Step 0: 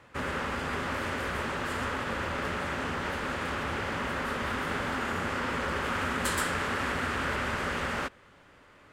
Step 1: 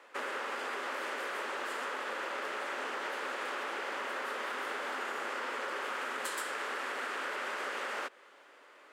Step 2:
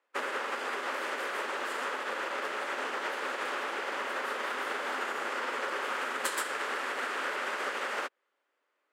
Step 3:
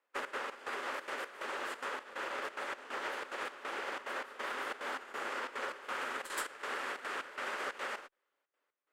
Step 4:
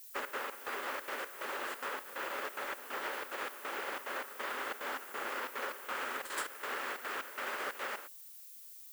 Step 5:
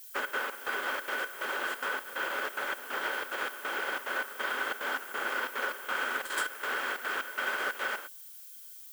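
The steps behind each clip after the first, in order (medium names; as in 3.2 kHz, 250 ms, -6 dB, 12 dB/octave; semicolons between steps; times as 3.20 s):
high-pass 360 Hz 24 dB/octave; compression, threshold -34 dBFS, peak gain reduction 8.5 dB
upward expansion 2.5:1, over -54 dBFS; trim +7 dB
Chebyshev shaper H 4 -29 dB, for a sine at -17 dBFS; trance gate "xxx.xx..x" 181 bpm -12 dB; trim -4.5 dB
added noise violet -52 dBFS
small resonant body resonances 1.5/3.2 kHz, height 12 dB, ringing for 45 ms; trim +3.5 dB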